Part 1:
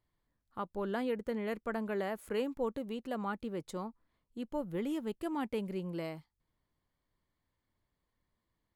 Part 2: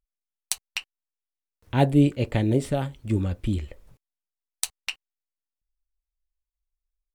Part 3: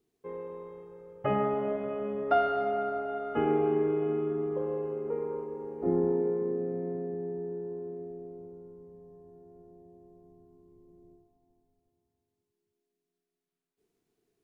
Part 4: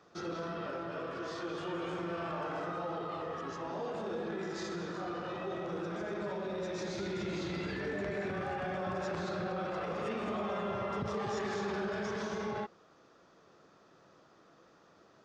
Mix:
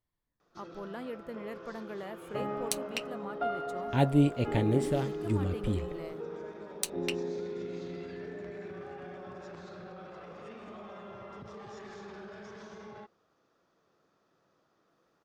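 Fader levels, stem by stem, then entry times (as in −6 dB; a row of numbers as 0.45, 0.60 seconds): −6.0, −5.5, −8.0, −10.5 decibels; 0.00, 2.20, 1.10, 0.40 seconds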